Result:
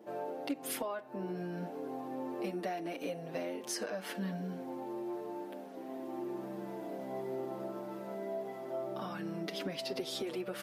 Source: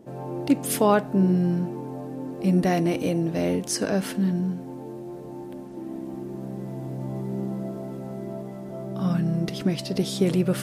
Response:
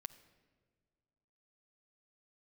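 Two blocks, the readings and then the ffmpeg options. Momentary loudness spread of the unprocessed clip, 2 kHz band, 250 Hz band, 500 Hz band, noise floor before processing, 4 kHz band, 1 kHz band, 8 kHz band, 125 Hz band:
15 LU, -9.5 dB, -15.5 dB, -10.0 dB, -38 dBFS, -8.0 dB, -10.0 dB, -11.5 dB, -20.5 dB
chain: -filter_complex "[0:a]highpass=440,equalizer=f=8200:w=0.79:g=-8.5,acompressor=threshold=0.0178:ratio=20,asplit=2[s0][s1];[s1]adelay=6.4,afreqshift=-0.76[s2];[s0][s2]amix=inputs=2:normalize=1,volume=1.58"

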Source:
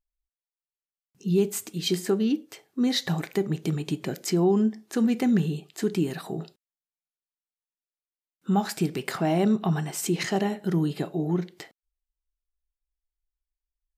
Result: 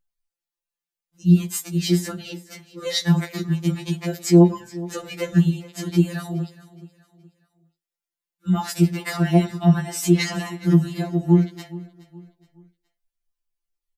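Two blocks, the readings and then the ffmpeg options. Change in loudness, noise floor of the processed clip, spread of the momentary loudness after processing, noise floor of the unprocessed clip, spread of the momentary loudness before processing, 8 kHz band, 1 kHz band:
+5.5 dB, under -85 dBFS, 15 LU, under -85 dBFS, 8 LU, +4.0 dB, +1.0 dB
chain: -filter_complex "[0:a]asplit=2[s0][s1];[s1]aecho=0:1:420|840|1260:0.112|0.0426|0.0162[s2];[s0][s2]amix=inputs=2:normalize=0,afftfilt=real='re*2.83*eq(mod(b,8),0)':imag='im*2.83*eq(mod(b,8),0)':win_size=2048:overlap=0.75,volume=2"

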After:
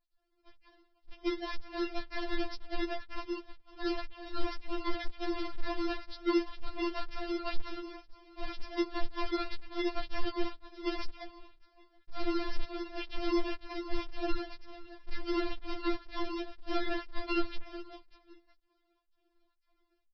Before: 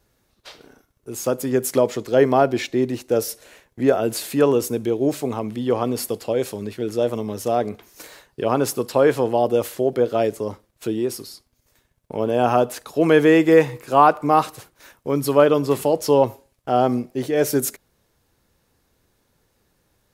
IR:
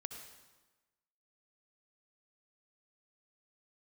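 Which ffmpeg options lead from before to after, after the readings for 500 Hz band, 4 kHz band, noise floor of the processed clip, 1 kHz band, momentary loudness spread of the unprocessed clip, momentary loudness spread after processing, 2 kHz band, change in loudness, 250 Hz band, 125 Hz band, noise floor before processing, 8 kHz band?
-21.0 dB, -7.5 dB, -76 dBFS, -18.5 dB, 13 LU, 12 LU, -11.5 dB, -17.0 dB, -13.5 dB, under -20 dB, -67 dBFS, under -30 dB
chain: -filter_complex "[0:a]afftfilt=real='real(if(between(b,1,1012),(2*floor((b-1)/92)+1)*92-b,b),0)':imag='imag(if(between(b,1,1012),(2*floor((b-1)/92)+1)*92-b,b),0)*if(between(b,1,1012),-1,1)':win_size=2048:overlap=0.75,aemphasis=mode=reproduction:type=75fm,dynaudnorm=f=180:g=7:m=1.78,flanger=delay=1.2:depth=8.9:regen=-28:speed=0.76:shape=sinusoidal,asplit=2[s0][s1];[s1]aecho=0:1:188|376|564|752|940:0.15|0.0868|0.0503|0.0292|0.0169[s2];[s0][s2]amix=inputs=2:normalize=0,alimiter=limit=0.211:level=0:latency=1:release=59,highpass=510,lowpass=4200,adynamicequalizer=threshold=0.0158:dfrequency=1300:dqfactor=3.6:tfrequency=1300:tqfactor=3.6:attack=5:release=100:ratio=0.375:range=2:mode=boostabove:tftype=bell,aresample=11025,acrusher=samples=25:mix=1:aa=0.000001:lfo=1:lforange=15:lforate=2,aresample=44100,acompressor=threshold=0.0891:ratio=6,afftfilt=real='re*4*eq(mod(b,16),0)':imag='im*4*eq(mod(b,16),0)':win_size=2048:overlap=0.75,volume=0.75"

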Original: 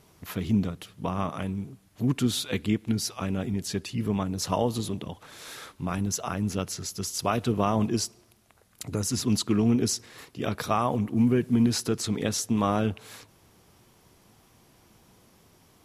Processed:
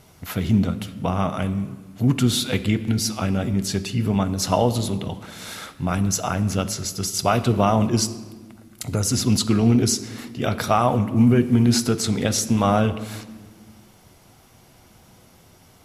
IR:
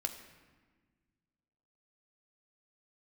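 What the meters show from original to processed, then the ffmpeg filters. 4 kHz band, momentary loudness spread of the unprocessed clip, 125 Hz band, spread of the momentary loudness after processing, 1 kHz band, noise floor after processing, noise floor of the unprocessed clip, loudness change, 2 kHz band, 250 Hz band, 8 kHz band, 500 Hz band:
+6.5 dB, 12 LU, +8.0 dB, 13 LU, +6.5 dB, -52 dBFS, -60 dBFS, +6.5 dB, +7.0 dB, +5.5 dB, +6.5 dB, +6.0 dB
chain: -filter_complex "[0:a]asplit=2[s0][s1];[1:a]atrim=start_sample=2205[s2];[s1][s2]afir=irnorm=-1:irlink=0,volume=1.19[s3];[s0][s3]amix=inputs=2:normalize=0"

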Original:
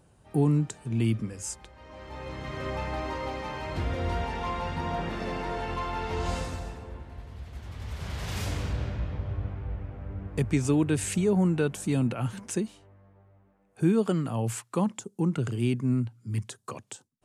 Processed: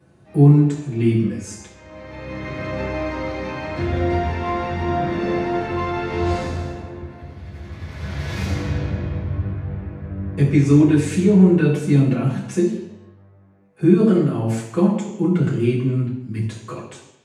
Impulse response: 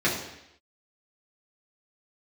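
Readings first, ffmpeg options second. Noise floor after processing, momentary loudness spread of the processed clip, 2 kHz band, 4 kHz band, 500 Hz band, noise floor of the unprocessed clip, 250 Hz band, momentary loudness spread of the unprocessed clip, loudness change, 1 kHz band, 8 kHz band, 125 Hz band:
-49 dBFS, 20 LU, +7.5 dB, +3.5 dB, +9.5 dB, -63 dBFS, +11.0 dB, 16 LU, +10.0 dB, +6.5 dB, -0.5 dB, +10.0 dB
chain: -filter_complex "[0:a]bandreject=f=60:t=h:w=6,bandreject=f=120:t=h:w=6,bandreject=f=180:t=h:w=6[s0];[1:a]atrim=start_sample=2205,asetrate=43218,aresample=44100[s1];[s0][s1]afir=irnorm=-1:irlink=0,volume=0.422"

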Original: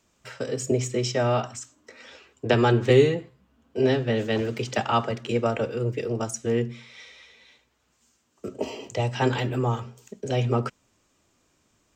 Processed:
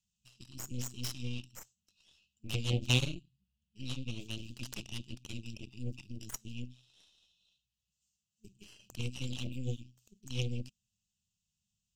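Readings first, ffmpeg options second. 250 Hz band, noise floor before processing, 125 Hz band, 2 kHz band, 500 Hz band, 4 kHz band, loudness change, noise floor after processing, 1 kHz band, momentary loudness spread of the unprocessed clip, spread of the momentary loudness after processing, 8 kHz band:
-15.5 dB, -69 dBFS, -10.5 dB, -12.5 dB, -25.5 dB, -5.0 dB, -13.5 dB, under -85 dBFS, -27.0 dB, 17 LU, 19 LU, -8.0 dB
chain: -af "afftfilt=real='re*(1-between(b*sr/4096,220,2500))':imag='im*(1-between(b*sr/4096,220,2500))':win_size=4096:overlap=0.75,aeval=exprs='0.2*(cos(1*acos(clip(val(0)/0.2,-1,1)))-cos(1*PI/2))+0.0631*(cos(2*acos(clip(val(0)/0.2,-1,1)))-cos(2*PI/2))+0.0562*(cos(3*acos(clip(val(0)/0.2,-1,1)))-cos(3*PI/2))+0.0178*(cos(8*acos(clip(val(0)/0.2,-1,1)))-cos(8*PI/2))':c=same"

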